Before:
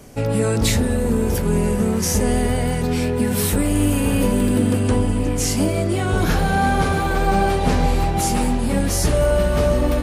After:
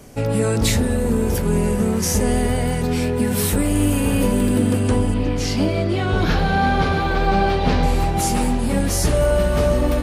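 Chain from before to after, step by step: 5.14–7.83 s: resonant high shelf 6.1 kHz -11.5 dB, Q 1.5

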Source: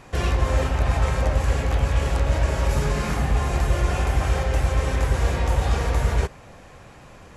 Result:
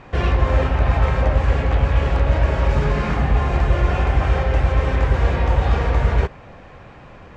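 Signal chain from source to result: low-pass 3.1 kHz 12 dB/octave; trim +4 dB

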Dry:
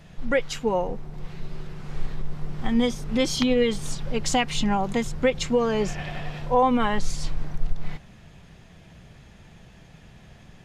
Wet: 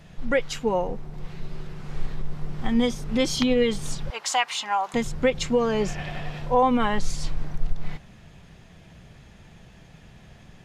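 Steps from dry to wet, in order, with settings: 4.10–4.94 s: resonant high-pass 940 Hz, resonance Q 1.7

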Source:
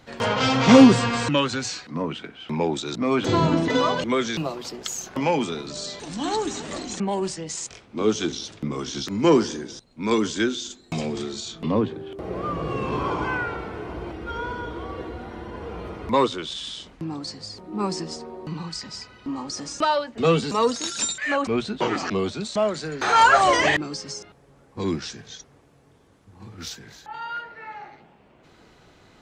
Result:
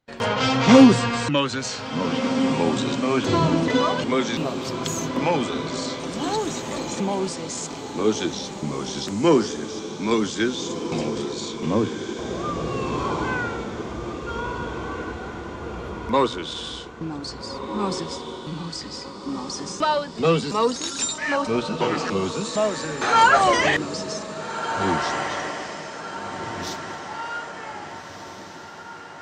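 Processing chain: gate -44 dBFS, range -25 dB; echo that smears into a reverb 1673 ms, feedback 48%, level -8 dB

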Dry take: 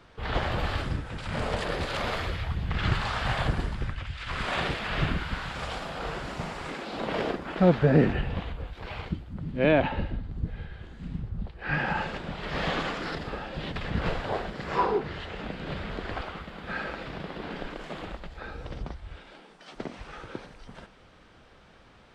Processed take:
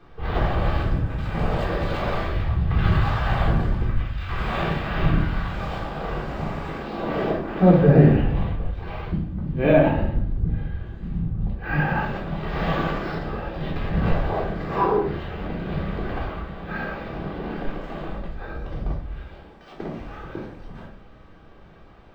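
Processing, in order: treble shelf 2.2 kHz -10 dB; simulated room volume 540 m³, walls furnished, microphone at 3.7 m; decimation joined by straight lines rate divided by 2×

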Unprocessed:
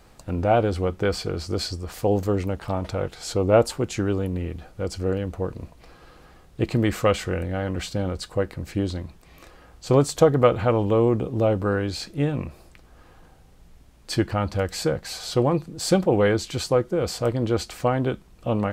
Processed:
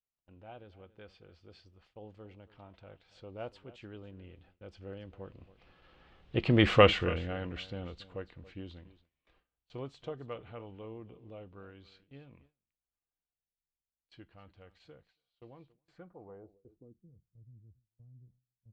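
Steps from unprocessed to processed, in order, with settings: Doppler pass-by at 6.74 s, 13 m/s, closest 2.4 m; on a send: delay 279 ms -18 dB; on the sum: gate with hold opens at -53 dBFS; low-pass sweep 3.1 kHz -> 130 Hz, 15.72–17.22 s

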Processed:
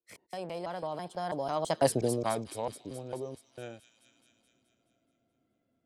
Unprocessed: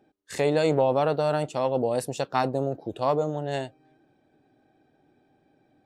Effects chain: slices played last to first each 194 ms, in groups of 2; Doppler pass-by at 1.89 s, 52 m/s, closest 3.7 m; feedback echo behind a high-pass 213 ms, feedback 58%, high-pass 3.8 kHz, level -6 dB; three bands compressed up and down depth 40%; trim +8 dB

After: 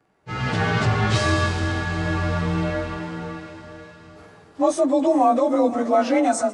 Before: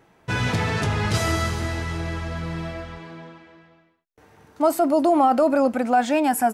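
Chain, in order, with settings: frequency axis rescaled in octaves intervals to 92%; echo that smears into a reverb 453 ms, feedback 62%, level -15 dB; level rider gain up to 15 dB; trim -6.5 dB

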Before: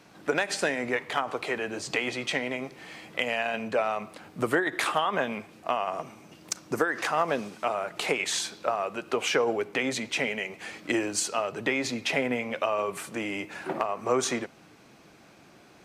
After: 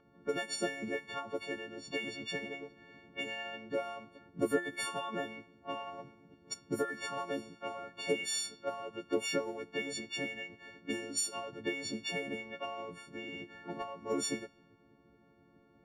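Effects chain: partials quantised in pitch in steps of 4 st; harmonic-percussive split harmonic -17 dB; level-controlled noise filter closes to 1.4 kHz, open at -32 dBFS

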